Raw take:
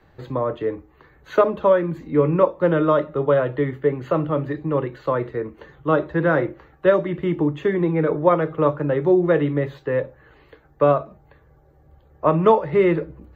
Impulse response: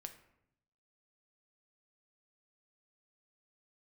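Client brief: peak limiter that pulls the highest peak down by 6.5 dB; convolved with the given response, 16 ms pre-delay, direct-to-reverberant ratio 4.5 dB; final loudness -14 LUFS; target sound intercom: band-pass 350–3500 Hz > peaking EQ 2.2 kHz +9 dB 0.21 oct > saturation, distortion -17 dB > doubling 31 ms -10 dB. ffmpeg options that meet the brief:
-filter_complex "[0:a]alimiter=limit=0.335:level=0:latency=1,asplit=2[s0][s1];[1:a]atrim=start_sample=2205,adelay=16[s2];[s1][s2]afir=irnorm=-1:irlink=0,volume=1[s3];[s0][s3]amix=inputs=2:normalize=0,highpass=350,lowpass=3500,equalizer=f=2200:t=o:w=0.21:g=9,asoftclip=threshold=0.237,asplit=2[s4][s5];[s5]adelay=31,volume=0.316[s6];[s4][s6]amix=inputs=2:normalize=0,volume=3.16"

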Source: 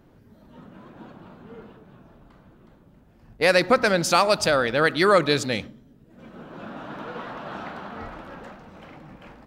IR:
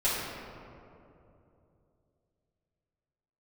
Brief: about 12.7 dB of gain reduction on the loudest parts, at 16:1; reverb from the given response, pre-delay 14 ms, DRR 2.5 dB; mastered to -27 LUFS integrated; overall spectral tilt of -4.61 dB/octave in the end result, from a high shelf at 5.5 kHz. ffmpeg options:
-filter_complex "[0:a]highshelf=f=5500:g=-6,acompressor=threshold=0.0501:ratio=16,asplit=2[s0][s1];[1:a]atrim=start_sample=2205,adelay=14[s2];[s1][s2]afir=irnorm=-1:irlink=0,volume=0.211[s3];[s0][s3]amix=inputs=2:normalize=0,volume=1.78"

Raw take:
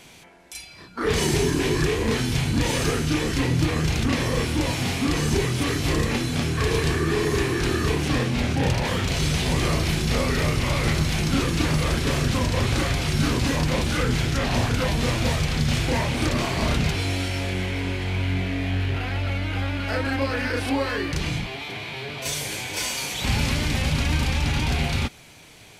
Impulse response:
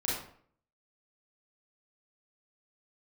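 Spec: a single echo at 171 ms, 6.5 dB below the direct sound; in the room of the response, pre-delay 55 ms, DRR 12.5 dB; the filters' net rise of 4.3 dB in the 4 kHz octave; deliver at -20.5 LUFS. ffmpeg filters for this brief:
-filter_complex "[0:a]equalizer=f=4000:t=o:g=5.5,aecho=1:1:171:0.473,asplit=2[s0][s1];[1:a]atrim=start_sample=2205,adelay=55[s2];[s1][s2]afir=irnorm=-1:irlink=0,volume=0.119[s3];[s0][s3]amix=inputs=2:normalize=0,volume=1.12"

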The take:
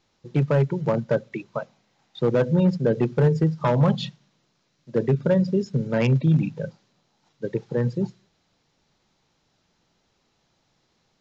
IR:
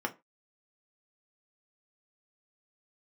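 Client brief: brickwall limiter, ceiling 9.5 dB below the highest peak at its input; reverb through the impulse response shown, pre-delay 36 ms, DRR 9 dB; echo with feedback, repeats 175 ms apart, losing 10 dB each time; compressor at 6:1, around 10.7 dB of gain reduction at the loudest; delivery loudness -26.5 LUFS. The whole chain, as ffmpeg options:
-filter_complex "[0:a]acompressor=threshold=0.0447:ratio=6,alimiter=level_in=1.12:limit=0.0631:level=0:latency=1,volume=0.891,aecho=1:1:175|350|525|700:0.316|0.101|0.0324|0.0104,asplit=2[s0][s1];[1:a]atrim=start_sample=2205,adelay=36[s2];[s1][s2]afir=irnorm=-1:irlink=0,volume=0.188[s3];[s0][s3]amix=inputs=2:normalize=0,volume=2.37"

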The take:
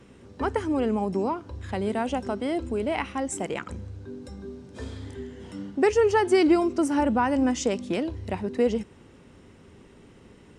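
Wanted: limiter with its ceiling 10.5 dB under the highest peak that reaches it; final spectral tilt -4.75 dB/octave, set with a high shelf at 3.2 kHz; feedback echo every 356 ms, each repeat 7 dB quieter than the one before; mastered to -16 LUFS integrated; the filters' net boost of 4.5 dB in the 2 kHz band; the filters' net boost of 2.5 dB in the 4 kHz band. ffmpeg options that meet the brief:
-af "equalizer=f=2000:t=o:g=6,highshelf=f=3200:g=-5.5,equalizer=f=4000:t=o:g=5,alimiter=limit=0.119:level=0:latency=1,aecho=1:1:356|712|1068|1424|1780:0.447|0.201|0.0905|0.0407|0.0183,volume=4.22"

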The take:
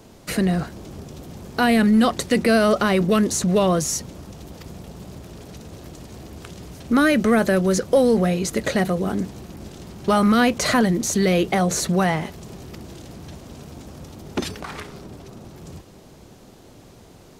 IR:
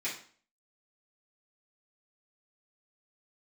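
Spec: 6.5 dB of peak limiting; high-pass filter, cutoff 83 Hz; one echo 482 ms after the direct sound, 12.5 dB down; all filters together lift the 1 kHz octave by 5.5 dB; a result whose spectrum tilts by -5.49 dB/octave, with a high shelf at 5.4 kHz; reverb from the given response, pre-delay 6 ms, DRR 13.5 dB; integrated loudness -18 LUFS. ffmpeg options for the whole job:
-filter_complex "[0:a]highpass=83,equalizer=f=1000:t=o:g=8,highshelf=f=5400:g=-7,alimiter=limit=0.335:level=0:latency=1,aecho=1:1:482:0.237,asplit=2[s0][s1];[1:a]atrim=start_sample=2205,adelay=6[s2];[s1][s2]afir=irnorm=-1:irlink=0,volume=0.119[s3];[s0][s3]amix=inputs=2:normalize=0,volume=1.33"

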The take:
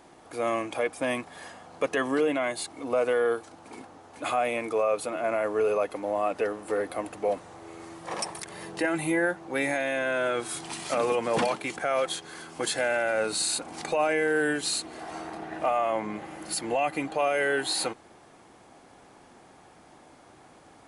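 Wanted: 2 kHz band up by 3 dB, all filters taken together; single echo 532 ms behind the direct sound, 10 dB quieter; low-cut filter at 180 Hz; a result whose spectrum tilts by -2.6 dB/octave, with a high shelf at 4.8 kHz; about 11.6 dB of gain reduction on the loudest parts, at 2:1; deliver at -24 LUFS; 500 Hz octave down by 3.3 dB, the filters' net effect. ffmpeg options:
-af "highpass=180,equalizer=f=500:t=o:g=-4,equalizer=f=2000:t=o:g=5.5,highshelf=f=4800:g=-8.5,acompressor=threshold=0.00631:ratio=2,aecho=1:1:532:0.316,volume=5.96"

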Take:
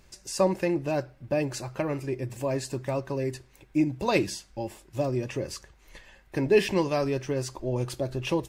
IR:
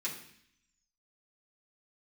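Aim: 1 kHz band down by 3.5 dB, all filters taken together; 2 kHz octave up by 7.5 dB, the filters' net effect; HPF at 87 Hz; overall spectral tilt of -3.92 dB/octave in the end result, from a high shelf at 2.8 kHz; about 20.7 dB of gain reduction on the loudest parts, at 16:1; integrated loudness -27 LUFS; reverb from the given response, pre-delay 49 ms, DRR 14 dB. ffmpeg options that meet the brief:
-filter_complex "[0:a]highpass=87,equalizer=f=1000:t=o:g=-7,equalizer=f=2000:t=o:g=7.5,highshelf=f=2800:g=7.5,acompressor=threshold=0.0158:ratio=16,asplit=2[s0][s1];[1:a]atrim=start_sample=2205,adelay=49[s2];[s1][s2]afir=irnorm=-1:irlink=0,volume=0.15[s3];[s0][s3]amix=inputs=2:normalize=0,volume=4.73"

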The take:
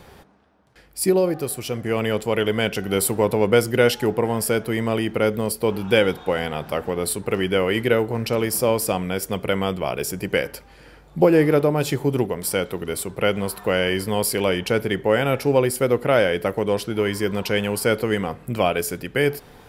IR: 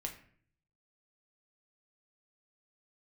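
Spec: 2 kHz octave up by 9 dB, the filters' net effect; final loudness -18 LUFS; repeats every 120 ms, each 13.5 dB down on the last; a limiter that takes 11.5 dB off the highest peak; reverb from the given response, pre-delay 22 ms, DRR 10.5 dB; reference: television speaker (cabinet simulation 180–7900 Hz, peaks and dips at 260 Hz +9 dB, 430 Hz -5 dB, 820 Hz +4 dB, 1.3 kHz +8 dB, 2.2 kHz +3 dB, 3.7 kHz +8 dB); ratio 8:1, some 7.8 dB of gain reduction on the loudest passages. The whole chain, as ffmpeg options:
-filter_complex "[0:a]equalizer=f=2000:t=o:g=7,acompressor=threshold=0.126:ratio=8,alimiter=limit=0.126:level=0:latency=1,aecho=1:1:120|240:0.211|0.0444,asplit=2[s0][s1];[1:a]atrim=start_sample=2205,adelay=22[s2];[s1][s2]afir=irnorm=-1:irlink=0,volume=0.335[s3];[s0][s3]amix=inputs=2:normalize=0,highpass=f=180:w=0.5412,highpass=f=180:w=1.3066,equalizer=f=260:t=q:w=4:g=9,equalizer=f=430:t=q:w=4:g=-5,equalizer=f=820:t=q:w=4:g=4,equalizer=f=1300:t=q:w=4:g=8,equalizer=f=2200:t=q:w=4:g=3,equalizer=f=3700:t=q:w=4:g=8,lowpass=f=7900:w=0.5412,lowpass=f=7900:w=1.3066,volume=2.99"

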